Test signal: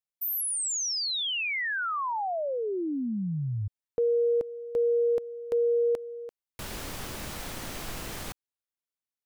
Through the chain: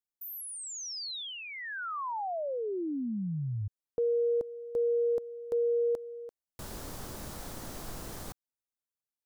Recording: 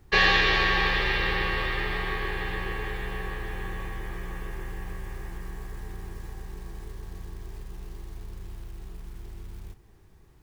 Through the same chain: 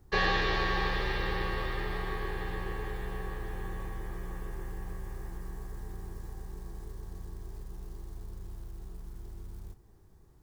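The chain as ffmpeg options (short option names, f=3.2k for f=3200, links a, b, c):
-filter_complex "[0:a]acrossover=split=4400[a][b];[b]acompressor=threshold=-38dB:ratio=4:attack=1:release=60[c];[a][c]amix=inputs=2:normalize=0,equalizer=f=2.5k:t=o:w=1.3:g=-9.5,volume=-3dB"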